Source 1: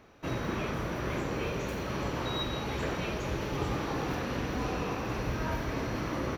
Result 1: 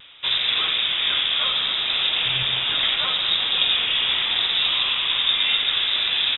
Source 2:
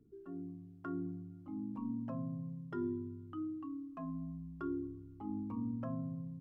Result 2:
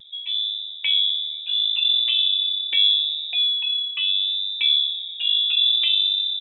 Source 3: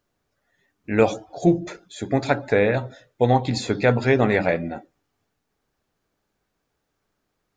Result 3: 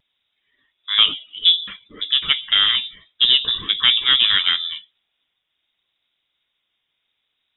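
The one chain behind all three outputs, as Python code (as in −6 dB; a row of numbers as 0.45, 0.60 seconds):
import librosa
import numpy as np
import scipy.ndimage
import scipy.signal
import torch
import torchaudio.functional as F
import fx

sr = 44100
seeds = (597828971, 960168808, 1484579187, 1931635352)

y = fx.cheby_harmonics(x, sr, harmonics=(6,), levels_db=(-25,), full_scale_db=-3.5)
y = fx.freq_invert(y, sr, carrier_hz=3700)
y = fx.vibrato(y, sr, rate_hz=0.7, depth_cents=21.0)
y = y * 10.0 ** (-22 / 20.0) / np.sqrt(np.mean(np.square(y)))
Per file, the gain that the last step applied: +11.0, +19.5, +2.0 decibels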